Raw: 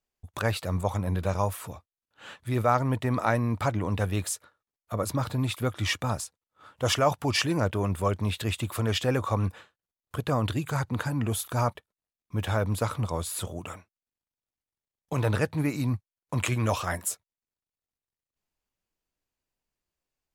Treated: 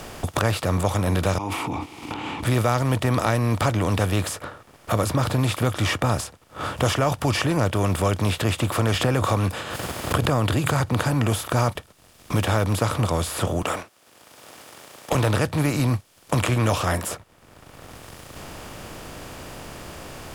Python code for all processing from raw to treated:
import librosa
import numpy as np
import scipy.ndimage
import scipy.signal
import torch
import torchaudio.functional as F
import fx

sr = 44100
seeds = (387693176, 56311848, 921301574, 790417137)

y = fx.chain(x, sr, fx.vowel_filter(vowel='u'),
    fx.sustainer(db_per_s=32.0), at=(1.38, 2.43))
y = fx.chain(y, sr, fx.highpass(hz=54.0, slope=12),
    fx.notch(hz=5800.0, q=16.0),
    fx.pre_swell(db_per_s=54.0), at=(8.94, 10.8))
y = fx.chain(y, sr, fx.highpass(hz=400.0, slope=12),
    fx.leveller(passes=1), at=(13.62, 15.15))
y = fx.bin_compress(y, sr, power=0.6)
y = fx.low_shelf(y, sr, hz=160.0, db=5.5)
y = fx.band_squash(y, sr, depth_pct=70)